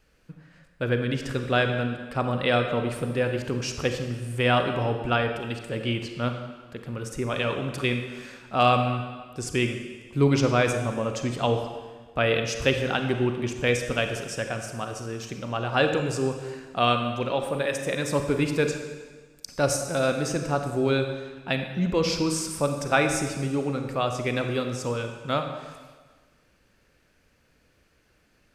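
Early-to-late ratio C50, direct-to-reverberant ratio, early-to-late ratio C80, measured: 6.5 dB, 5.5 dB, 8.0 dB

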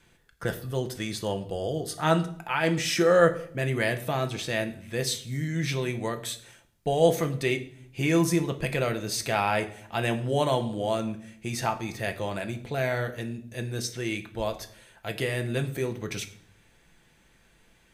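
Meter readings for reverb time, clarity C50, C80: 0.65 s, 14.0 dB, 17.5 dB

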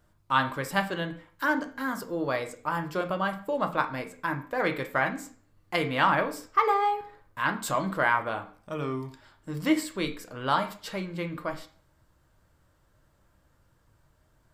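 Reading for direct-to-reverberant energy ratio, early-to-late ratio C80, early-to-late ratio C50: 5.5 dB, 17.5 dB, 12.5 dB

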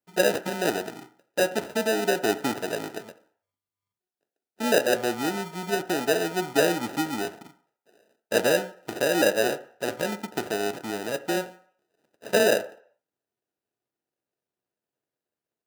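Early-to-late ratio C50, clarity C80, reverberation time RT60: 16.0 dB, 19.5 dB, 0.60 s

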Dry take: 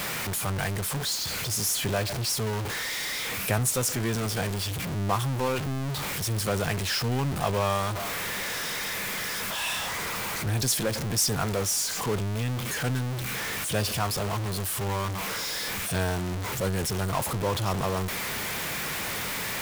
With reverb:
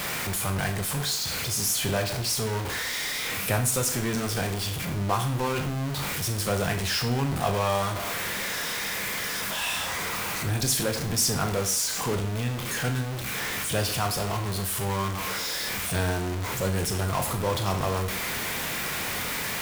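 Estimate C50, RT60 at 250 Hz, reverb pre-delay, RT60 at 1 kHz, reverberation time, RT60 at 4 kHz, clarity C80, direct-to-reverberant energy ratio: 10.0 dB, 0.45 s, 21 ms, 0.45 s, 0.45 s, 0.45 s, 13.5 dB, 5.0 dB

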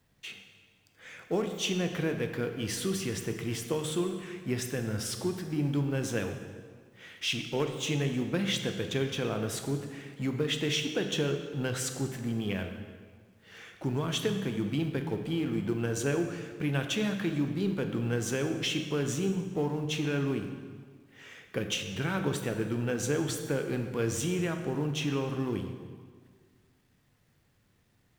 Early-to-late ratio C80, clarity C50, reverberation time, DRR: 8.5 dB, 7.0 dB, 1.7 s, 5.5 dB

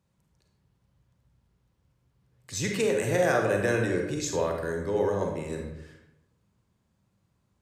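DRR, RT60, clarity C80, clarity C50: 1.5 dB, 0.90 s, 7.0 dB, 3.5 dB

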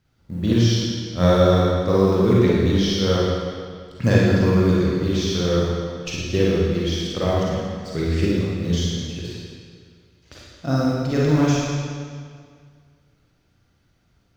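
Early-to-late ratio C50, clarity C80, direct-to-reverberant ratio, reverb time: -4.0 dB, 0.0 dB, -6.0 dB, 2.0 s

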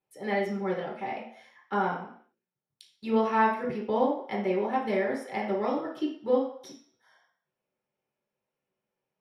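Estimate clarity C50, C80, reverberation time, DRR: 4.5 dB, 9.5 dB, 0.65 s, -4.0 dB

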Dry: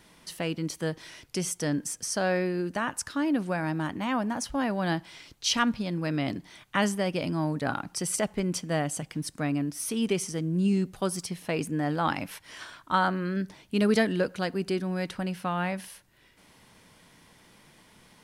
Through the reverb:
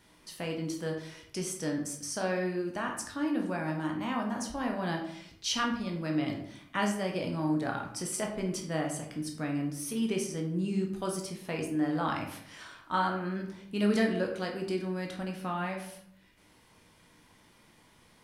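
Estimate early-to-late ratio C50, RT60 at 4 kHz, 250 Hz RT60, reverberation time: 6.5 dB, 0.40 s, 0.85 s, 0.65 s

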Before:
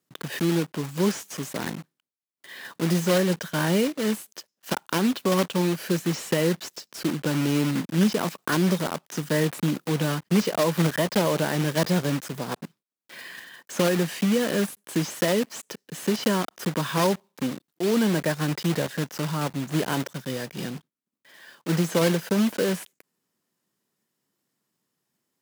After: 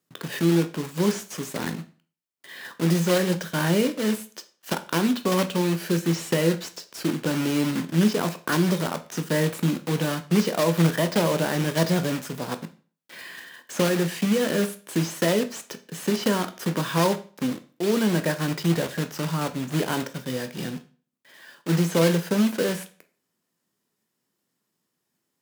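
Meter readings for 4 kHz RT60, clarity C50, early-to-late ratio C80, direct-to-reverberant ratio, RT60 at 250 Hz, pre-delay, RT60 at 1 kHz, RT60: 0.35 s, 15.5 dB, 20.0 dB, 8.5 dB, 0.40 s, 12 ms, 0.40 s, 0.40 s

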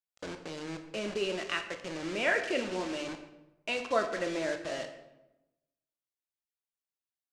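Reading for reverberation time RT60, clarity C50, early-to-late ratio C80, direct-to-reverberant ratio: 0.95 s, 9.0 dB, 11.0 dB, 6.0 dB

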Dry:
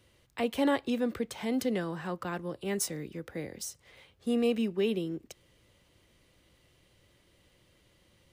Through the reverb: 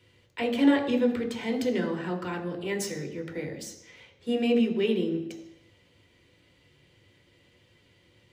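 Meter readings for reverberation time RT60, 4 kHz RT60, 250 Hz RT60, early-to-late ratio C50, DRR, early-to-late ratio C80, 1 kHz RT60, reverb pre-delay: 0.85 s, 0.85 s, 0.90 s, 9.5 dB, 2.5 dB, 11.5 dB, 0.85 s, 3 ms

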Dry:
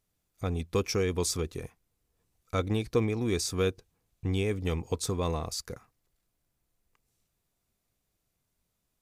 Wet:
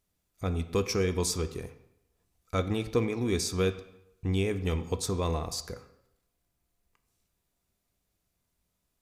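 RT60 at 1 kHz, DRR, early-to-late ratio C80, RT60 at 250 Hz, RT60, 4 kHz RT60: 0.80 s, 9.5 dB, 15.0 dB, 0.75 s, 0.80 s, 0.65 s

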